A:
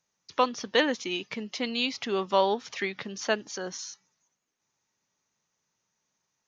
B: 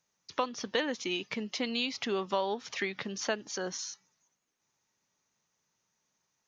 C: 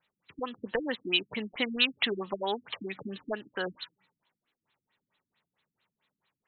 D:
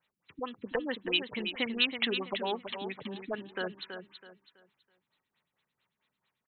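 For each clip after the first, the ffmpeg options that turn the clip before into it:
ffmpeg -i in.wav -af "acompressor=threshold=-29dB:ratio=3" out.wav
ffmpeg -i in.wav -af "crystalizer=i=8.5:c=0,aeval=exprs='0.266*(abs(mod(val(0)/0.266+3,4)-2)-1)':channel_layout=same,afftfilt=real='re*lt(b*sr/1024,310*pow(4300/310,0.5+0.5*sin(2*PI*4.5*pts/sr)))':imag='im*lt(b*sr/1024,310*pow(4300/310,0.5+0.5*sin(2*PI*4.5*pts/sr)))':win_size=1024:overlap=0.75" out.wav
ffmpeg -i in.wav -af "aecho=1:1:327|654|981|1308:0.398|0.119|0.0358|0.0107,volume=-2dB" out.wav

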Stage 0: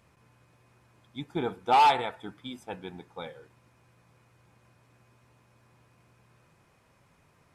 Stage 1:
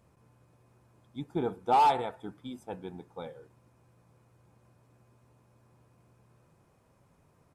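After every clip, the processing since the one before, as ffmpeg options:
ffmpeg -i in.wav -af "firequalizer=gain_entry='entry(470,0);entry(2000,-10);entry(8500,-3)':delay=0.05:min_phase=1" out.wav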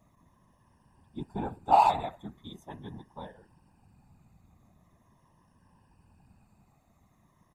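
ffmpeg -i in.wav -af "afftfilt=real='re*pow(10,10/40*sin(2*PI*(1.2*log(max(b,1)*sr/1024/100)/log(2)-(-0.42)*(pts-256)/sr)))':imag='im*pow(10,10/40*sin(2*PI*(1.2*log(max(b,1)*sr/1024/100)/log(2)-(-0.42)*(pts-256)/sr)))':win_size=1024:overlap=0.75,aecho=1:1:1.1:0.69,afftfilt=real='hypot(re,im)*cos(2*PI*random(0))':imag='hypot(re,im)*sin(2*PI*random(1))':win_size=512:overlap=0.75,volume=3dB" out.wav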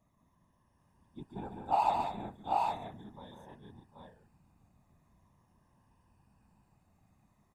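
ffmpeg -i in.wav -af "aecho=1:1:145|205|751|783|817:0.501|0.422|0.158|0.596|0.631,volume=-8.5dB" out.wav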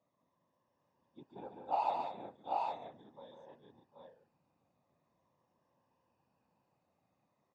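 ffmpeg -i in.wav -af "highpass=190,equalizer=frequency=200:width_type=q:width=4:gain=-6,equalizer=frequency=530:width_type=q:width=4:gain=10,equalizer=frequency=1700:width_type=q:width=4:gain=-3,lowpass=frequency=5900:width=0.5412,lowpass=frequency=5900:width=1.3066,volume=-6dB" out.wav

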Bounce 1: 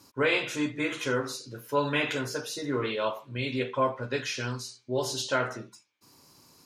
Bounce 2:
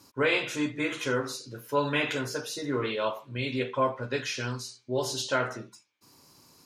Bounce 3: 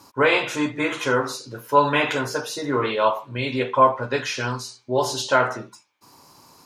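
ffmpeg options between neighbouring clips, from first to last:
ffmpeg -i in.wav -af anull out.wav
ffmpeg -i in.wav -af "equalizer=frequency=910:width_type=o:width=1.2:gain=9,volume=4.5dB" out.wav

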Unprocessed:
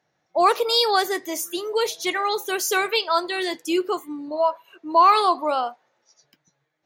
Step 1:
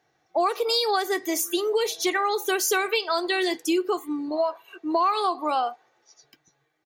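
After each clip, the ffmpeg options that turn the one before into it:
ffmpeg -i in.wav -af "aecho=1:1:2.6:0.49,acompressor=threshold=-23dB:ratio=6,volume=2.5dB" out.wav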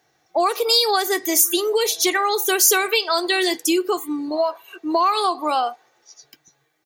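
ffmpeg -i in.wav -af "highshelf=frequency=5000:gain=10,volume=3.5dB" out.wav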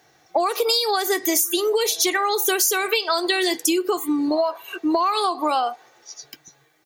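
ffmpeg -i in.wav -af "acompressor=threshold=-25dB:ratio=6,volume=7dB" out.wav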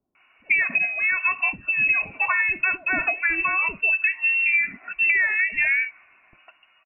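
ffmpeg -i in.wav -filter_complex "[0:a]lowpass=frequency=2600:width_type=q:width=0.5098,lowpass=frequency=2600:width_type=q:width=0.6013,lowpass=frequency=2600:width_type=q:width=0.9,lowpass=frequency=2600:width_type=q:width=2.563,afreqshift=-3000,acrossover=split=460[link_01][link_02];[link_02]adelay=150[link_03];[link_01][link_03]amix=inputs=2:normalize=0" out.wav

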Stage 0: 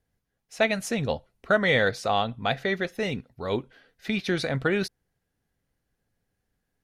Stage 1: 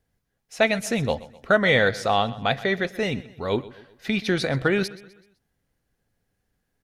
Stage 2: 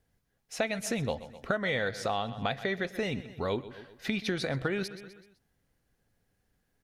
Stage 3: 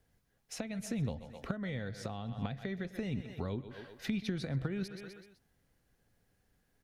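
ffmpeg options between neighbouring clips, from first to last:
ffmpeg -i in.wav -af "aecho=1:1:127|254|381|508:0.119|0.0523|0.023|0.0101,volume=3dB" out.wav
ffmpeg -i in.wav -af "acompressor=threshold=-29dB:ratio=4" out.wav
ffmpeg -i in.wav -filter_complex "[0:a]acrossover=split=250[link_01][link_02];[link_02]acompressor=threshold=-43dB:ratio=10[link_03];[link_01][link_03]amix=inputs=2:normalize=0,volume=1dB" out.wav

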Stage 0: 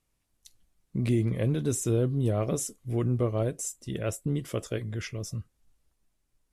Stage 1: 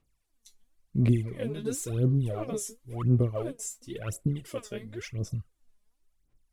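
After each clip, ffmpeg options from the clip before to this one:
ffmpeg -i in.wav -af "aphaser=in_gain=1:out_gain=1:delay=4.9:decay=0.77:speed=0.95:type=sinusoidal,volume=-7dB" out.wav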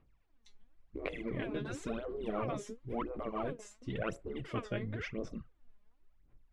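ffmpeg -i in.wav -af "afftfilt=real='re*lt(hypot(re,im),0.0891)':imag='im*lt(hypot(re,im),0.0891)':win_size=1024:overlap=0.75,lowpass=2200,volume=5.5dB" out.wav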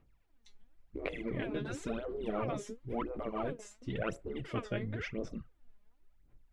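ffmpeg -i in.wav -af "bandreject=frequency=1100:width=15,volume=1dB" out.wav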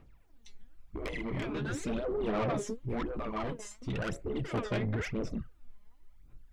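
ffmpeg -i in.wav -af "asoftclip=type=tanh:threshold=-37dB,aphaser=in_gain=1:out_gain=1:delay=1:decay=0.35:speed=0.42:type=sinusoidal,volume=6dB" out.wav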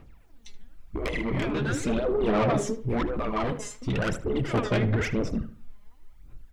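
ffmpeg -i in.wav -filter_complex "[0:a]asplit=2[link_01][link_02];[link_02]adelay=76,lowpass=frequency=2600:poles=1,volume=-12dB,asplit=2[link_03][link_04];[link_04]adelay=76,lowpass=frequency=2600:poles=1,volume=0.33,asplit=2[link_05][link_06];[link_06]adelay=76,lowpass=frequency=2600:poles=1,volume=0.33[link_07];[link_01][link_03][link_05][link_07]amix=inputs=4:normalize=0,volume=7.5dB" out.wav

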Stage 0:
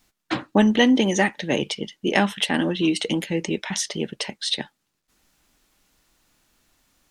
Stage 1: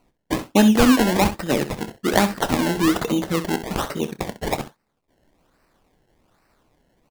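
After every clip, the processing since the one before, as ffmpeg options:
ffmpeg -i in.wav -af "acrusher=samples=25:mix=1:aa=0.000001:lfo=1:lforange=25:lforate=1.2,aecho=1:1:28|65:0.188|0.237,volume=1.5dB" out.wav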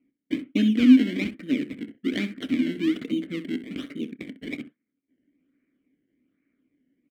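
ffmpeg -i in.wav -filter_complex "[0:a]asplit=3[link_01][link_02][link_03];[link_01]bandpass=frequency=270:width_type=q:width=8,volume=0dB[link_04];[link_02]bandpass=frequency=2290:width_type=q:width=8,volume=-6dB[link_05];[link_03]bandpass=frequency=3010:width_type=q:width=8,volume=-9dB[link_06];[link_04][link_05][link_06]amix=inputs=3:normalize=0,acrossover=split=2400[link_07][link_08];[link_08]aeval=exprs='sgn(val(0))*max(abs(val(0))-0.00106,0)':channel_layout=same[link_09];[link_07][link_09]amix=inputs=2:normalize=0,volume=5dB" out.wav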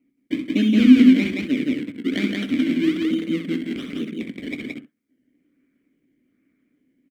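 ffmpeg -i in.wav -af "aecho=1:1:64.14|172:0.398|0.794,volume=2.5dB" out.wav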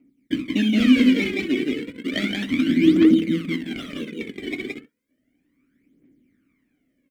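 ffmpeg -i in.wav -af "aphaser=in_gain=1:out_gain=1:delay=2.8:decay=0.66:speed=0.33:type=triangular" out.wav

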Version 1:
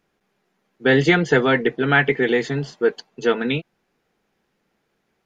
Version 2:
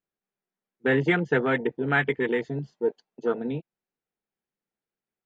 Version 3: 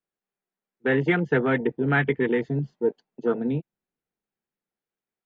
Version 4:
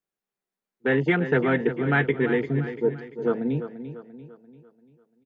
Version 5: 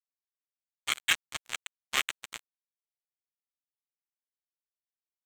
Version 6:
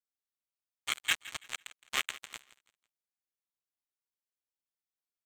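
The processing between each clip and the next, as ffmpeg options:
ffmpeg -i in.wav -af "afwtdn=0.0794,volume=-6.5dB" out.wav
ffmpeg -i in.wav -filter_complex "[0:a]bass=frequency=250:gain=-3,treble=frequency=4000:gain=-7,acrossover=split=280|730[link_01][link_02][link_03];[link_01]dynaudnorm=framelen=230:gausssize=11:maxgain=9dB[link_04];[link_04][link_02][link_03]amix=inputs=3:normalize=0" out.wav
ffmpeg -i in.wav -af "aecho=1:1:343|686|1029|1372|1715:0.282|0.127|0.0571|0.0257|0.0116" out.wav
ffmpeg -i in.wav -af "highpass=frequency=2700:width_type=q:width=13,acrusher=bits=2:mix=0:aa=0.5,aeval=exprs='val(0)*sin(2*PI*480*n/s)':channel_layout=same" out.wav
ffmpeg -i in.wav -af "aecho=1:1:166|332|498:0.133|0.0427|0.0137,volume=-3.5dB" out.wav

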